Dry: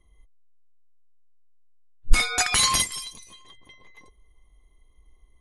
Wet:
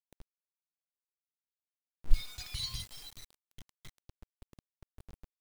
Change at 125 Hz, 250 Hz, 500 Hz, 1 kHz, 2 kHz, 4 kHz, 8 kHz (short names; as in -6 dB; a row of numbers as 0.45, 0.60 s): -7.0, -16.5, -22.5, -30.0, -26.0, -15.5, -24.5 dB